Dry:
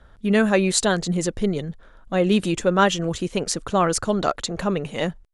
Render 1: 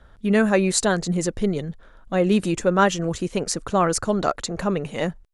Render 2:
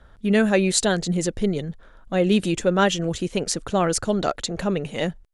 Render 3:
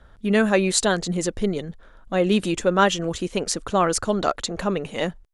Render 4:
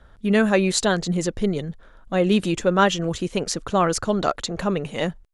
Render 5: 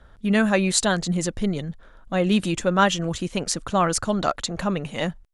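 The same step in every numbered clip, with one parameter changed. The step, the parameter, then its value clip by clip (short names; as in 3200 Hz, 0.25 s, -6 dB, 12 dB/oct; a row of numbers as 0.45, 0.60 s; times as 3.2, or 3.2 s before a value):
dynamic EQ, frequency: 3300, 1100, 140, 9000, 420 Hz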